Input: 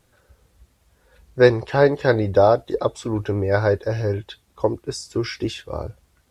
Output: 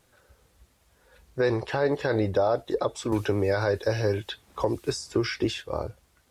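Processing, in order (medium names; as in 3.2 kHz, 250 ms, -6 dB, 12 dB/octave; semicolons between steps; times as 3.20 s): bass shelf 230 Hz -6 dB; peak limiter -14.5 dBFS, peak gain reduction 11.5 dB; 3.12–5.58 s: three bands compressed up and down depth 70%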